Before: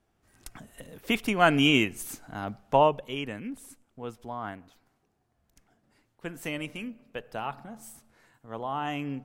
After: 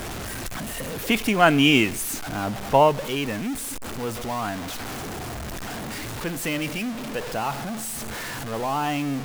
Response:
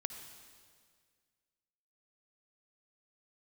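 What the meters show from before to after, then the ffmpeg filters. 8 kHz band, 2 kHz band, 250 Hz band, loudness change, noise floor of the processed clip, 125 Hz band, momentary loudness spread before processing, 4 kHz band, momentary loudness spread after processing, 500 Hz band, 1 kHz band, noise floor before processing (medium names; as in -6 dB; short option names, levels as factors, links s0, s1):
+13.0 dB, +5.5 dB, +6.0 dB, +3.0 dB, -33 dBFS, +6.5 dB, 22 LU, +5.5 dB, 14 LU, +5.0 dB, +5.0 dB, -74 dBFS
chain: -af "aeval=exprs='val(0)+0.5*0.0282*sgn(val(0))':c=same,acrusher=bits=7:mix=0:aa=0.000001,volume=1.5"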